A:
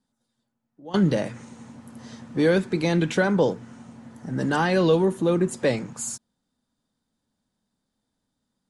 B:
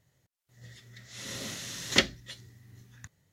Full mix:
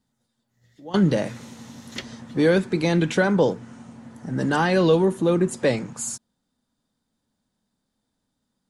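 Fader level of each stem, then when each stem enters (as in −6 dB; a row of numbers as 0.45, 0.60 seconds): +1.5, −11.5 decibels; 0.00, 0.00 seconds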